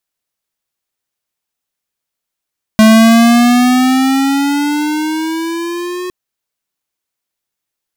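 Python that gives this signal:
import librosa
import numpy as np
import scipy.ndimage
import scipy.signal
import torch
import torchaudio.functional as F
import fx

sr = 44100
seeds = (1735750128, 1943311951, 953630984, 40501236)

y = fx.riser_tone(sr, length_s=3.31, level_db=-4.5, wave='square', hz=217.0, rise_st=9.0, swell_db=-17.0)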